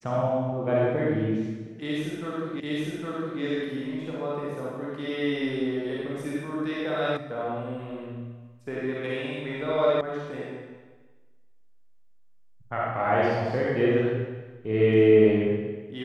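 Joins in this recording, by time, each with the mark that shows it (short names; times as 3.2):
2.6 repeat of the last 0.81 s
7.17 sound cut off
10.01 sound cut off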